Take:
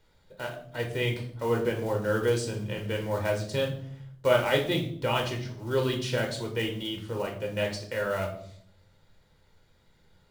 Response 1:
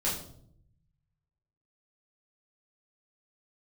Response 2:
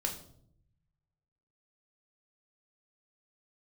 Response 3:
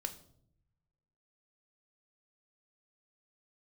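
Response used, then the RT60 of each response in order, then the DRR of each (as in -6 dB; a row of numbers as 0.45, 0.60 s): 2; 0.65, 0.65, 0.70 s; -8.0, 1.5, 7.0 dB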